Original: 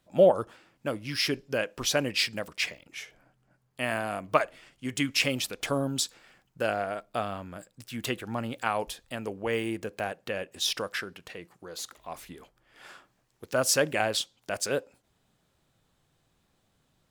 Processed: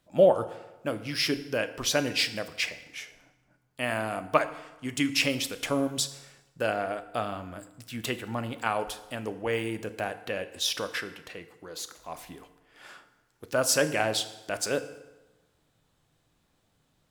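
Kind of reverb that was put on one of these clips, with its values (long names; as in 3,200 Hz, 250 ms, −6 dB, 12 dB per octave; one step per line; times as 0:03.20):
feedback delay network reverb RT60 1.1 s, low-frequency decay 0.9×, high-frequency decay 0.75×, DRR 10 dB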